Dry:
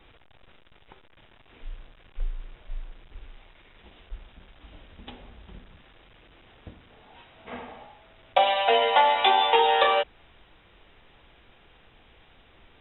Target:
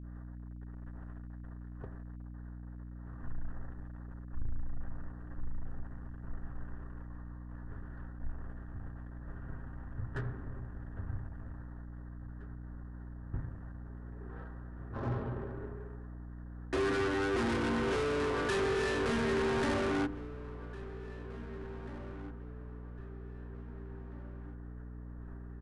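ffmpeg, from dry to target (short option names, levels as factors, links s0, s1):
-filter_complex "[0:a]bandreject=f=54:t=h:w=4,bandreject=f=108:t=h:w=4,bandreject=f=162:t=h:w=4,bandreject=f=216:t=h:w=4,bandreject=f=270:t=h:w=4,bandreject=f=324:t=h:w=4,bandreject=f=378:t=h:w=4,bandreject=f=432:t=h:w=4,bandreject=f=486:t=h:w=4,bandreject=f=540:t=h:w=4,bandreject=f=594:t=h:w=4,bandreject=f=648:t=h:w=4,bandreject=f=702:t=h:w=4,asoftclip=type=tanh:threshold=0.0224,aeval=exprs='0.0224*(cos(1*acos(clip(val(0)/0.0224,-1,1)))-cos(1*PI/2))+0.00112*(cos(7*acos(clip(val(0)/0.0224,-1,1)))-cos(7*PI/2))':c=same,agate=range=0.0224:threshold=0.002:ratio=3:detection=peak,equalizer=f=170:w=1.3:g=13,aecho=1:1:3.8:0.34,asplit=2[s0][s1];[s1]adelay=1122,lowpass=f=3200:p=1,volume=0.158,asplit=2[s2][s3];[s3]adelay=1122,lowpass=f=3200:p=1,volume=0.43,asplit=2[s4][s5];[s5]adelay=1122,lowpass=f=3200:p=1,volume=0.43,asplit=2[s6][s7];[s7]adelay=1122,lowpass=f=3200:p=1,volume=0.43[s8];[s2][s4][s6][s8]amix=inputs=4:normalize=0[s9];[s0][s9]amix=inputs=2:normalize=0,asetrate=22050,aresample=44100,aeval=exprs='val(0)+0.00562*(sin(2*PI*60*n/s)+sin(2*PI*2*60*n/s)/2+sin(2*PI*3*60*n/s)/3+sin(2*PI*4*60*n/s)/4+sin(2*PI*5*60*n/s)/5)':c=same,volume=1.12"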